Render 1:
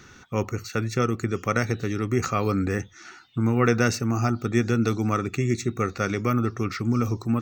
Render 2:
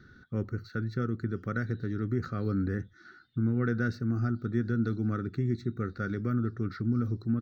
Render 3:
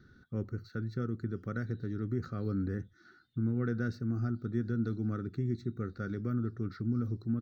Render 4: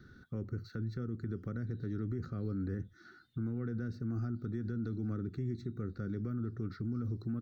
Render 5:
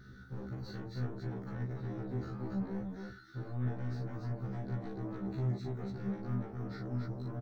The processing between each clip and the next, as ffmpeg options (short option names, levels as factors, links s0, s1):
-filter_complex "[0:a]firequalizer=gain_entry='entry(230,0);entry(960,-21);entry(1500,0);entry(2500,-24);entry(4000,-6);entry(6700,-28);entry(15000,-19)':delay=0.05:min_phase=1,asplit=2[s0][s1];[s1]alimiter=limit=0.112:level=0:latency=1:release=422,volume=1[s2];[s0][s2]amix=inputs=2:normalize=0,volume=0.355"
-af "equalizer=f=1900:t=o:w=1.7:g=-4.5,volume=0.668"
-filter_complex "[0:a]acrossover=split=450[s0][s1];[s0]alimiter=level_in=2.99:limit=0.0631:level=0:latency=1:release=49,volume=0.335[s2];[s1]acompressor=threshold=0.002:ratio=6[s3];[s2][s3]amix=inputs=2:normalize=0,volume=1.41"
-filter_complex "[0:a]asoftclip=type=tanh:threshold=0.0119,asplit=2[s0][s1];[s1]aecho=0:1:40.82|288.6:0.708|0.708[s2];[s0][s2]amix=inputs=2:normalize=0,afftfilt=real='re*1.73*eq(mod(b,3),0)':imag='im*1.73*eq(mod(b,3),0)':win_size=2048:overlap=0.75,volume=1.68"